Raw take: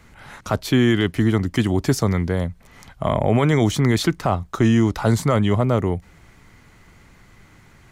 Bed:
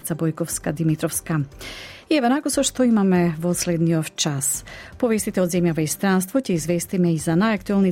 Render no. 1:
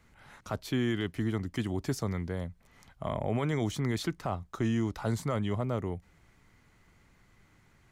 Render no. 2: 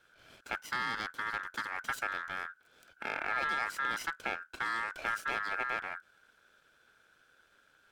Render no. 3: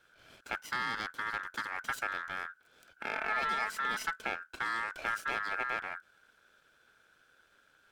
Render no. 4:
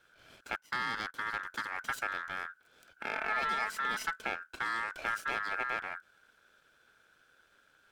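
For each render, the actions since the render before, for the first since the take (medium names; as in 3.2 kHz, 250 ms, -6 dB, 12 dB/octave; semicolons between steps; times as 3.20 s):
trim -13 dB
comb filter that takes the minimum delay 1.1 ms; ring modulator 1.5 kHz
3.12–4.24 s: comb 4.6 ms, depth 59%
0.56–1.14 s: gate -45 dBFS, range -14 dB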